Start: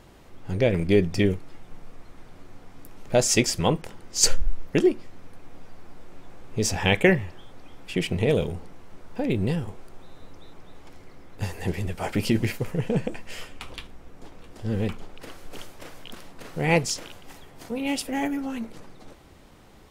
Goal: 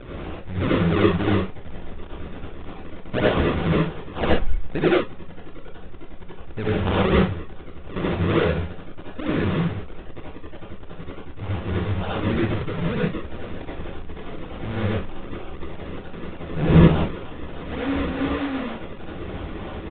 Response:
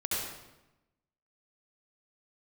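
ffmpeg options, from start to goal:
-filter_complex "[0:a]aeval=exprs='val(0)+0.5*0.0447*sgn(val(0))':c=same,acrusher=samples=40:mix=1:aa=0.000001:lfo=1:lforange=40:lforate=3.3,asettb=1/sr,asplit=3[s0][s1][s2];[s0]atrim=end=16.534[s3];[s1]atrim=start=16.53:end=16.98,asetpts=PTS-STARTPTS,afade=t=in:d=0.004:c=qsin,afade=t=out:st=0.446:d=0.004:c=qsin,lowshelf=f=320:g=9.5[s4];[s2]atrim=start=16.976[s5];[s3][s4]acrossfade=d=0.004:c1=hsin:c2=qsin[s6];[s6][s5]acrossfade=d=0.004:c1=qsin:c2=hsin[s7];[1:a]atrim=start_sample=2205,atrim=end_sample=6174[s8];[s7][s8]afir=irnorm=-1:irlink=0,aresample=8000,aresample=44100,volume=0.562"

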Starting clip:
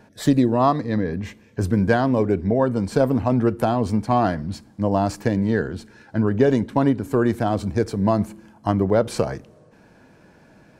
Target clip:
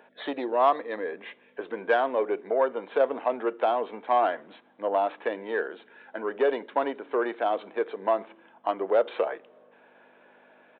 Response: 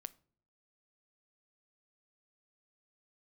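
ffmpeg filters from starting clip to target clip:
-af "aresample=8000,aresample=44100,acontrast=50,aeval=exprs='val(0)+0.0398*(sin(2*PI*50*n/s)+sin(2*PI*2*50*n/s)/2+sin(2*PI*3*50*n/s)/3+sin(2*PI*4*50*n/s)/4+sin(2*PI*5*50*n/s)/5)':c=same,highpass=f=430:w=0.5412,highpass=f=430:w=1.3066,volume=0.447"

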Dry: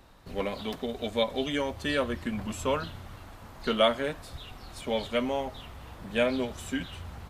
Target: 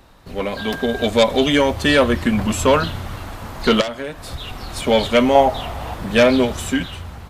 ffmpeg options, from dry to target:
-filter_complex "[0:a]aeval=exprs='0.316*sin(PI/2*2.51*val(0)/0.316)':c=same,dynaudnorm=f=160:g=9:m=3.76,asettb=1/sr,asplit=3[s0][s1][s2];[s0]atrim=end=0.574[s3];[s1]atrim=start=0.57:end=1.05,asetpts=PTS-STARTPTS,afade=t=in:d=0.004:c=qsin,afade=t=out:st=0.476:d=0.004:c=qsin,aeval=exprs='val(0)+0.0562*sin(2*PI*1600*n/s)':c=same[s4];[s2]atrim=start=1.046[s5];[s3][s4]acrossfade=d=0.004:c1=hsin:c2=qsin[s6];[s6][s5]acrossfade=d=0.004:c1=qsin:c2=hsin,asplit=3[s7][s8][s9];[s7]afade=t=out:st=3.8:d=0.02[s10];[s8]acompressor=threshold=0.1:ratio=6,afade=t=in:st=3.8:d=0.02,afade=t=out:st=4.73:d=0.02[s11];[s9]afade=t=in:st=4.73:d=0.02[s12];[s10][s11][s12]amix=inputs=3:normalize=0,asettb=1/sr,asplit=3[s13][s14][s15];[s13]atrim=end=5.354[s16];[s14]atrim=start=5.35:end=5.94,asetpts=PTS-STARTPTS,afade=t=in:d=0.004:c=qsin,afade=t=out:st=0.586:d=0.004:c=qsin,equalizer=f=710:w=2:g=9.5[s17];[s15]atrim=start=5.936[s18];[s16][s17]acrossfade=d=0.004:c1=hsin:c2=qsin[s19];[s19][s18]acrossfade=d=0.004:c1=qsin:c2=hsin,volume=0.562"

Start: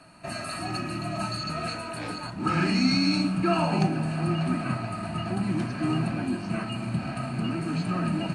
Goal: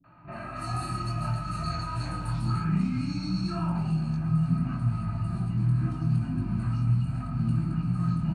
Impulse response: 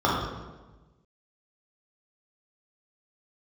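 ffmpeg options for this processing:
-filter_complex "[0:a]asubboost=boost=11.5:cutoff=130,acompressor=threshold=0.0631:ratio=6,flanger=delay=18:depth=6.6:speed=0.81,acrossover=split=300|2700[s0][s1][s2];[s1]adelay=40[s3];[s2]adelay=320[s4];[s0][s3][s4]amix=inputs=3:normalize=0,asplit=2[s5][s6];[1:a]atrim=start_sample=2205,afade=t=out:st=0.25:d=0.01,atrim=end_sample=11466[s7];[s6][s7]afir=irnorm=-1:irlink=0,volume=0.1[s8];[s5][s8]amix=inputs=2:normalize=0,volume=0.794"

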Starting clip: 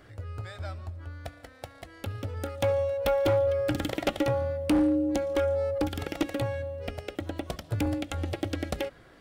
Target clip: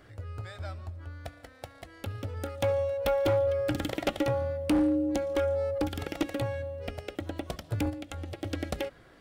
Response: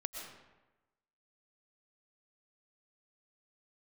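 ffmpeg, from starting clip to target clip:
-filter_complex "[0:a]asplit=3[s0][s1][s2];[s0]afade=t=out:st=7.89:d=0.02[s3];[s1]acompressor=threshold=0.0178:ratio=3,afade=t=in:st=7.89:d=0.02,afade=t=out:st=8.43:d=0.02[s4];[s2]afade=t=in:st=8.43:d=0.02[s5];[s3][s4][s5]amix=inputs=3:normalize=0,volume=0.841"

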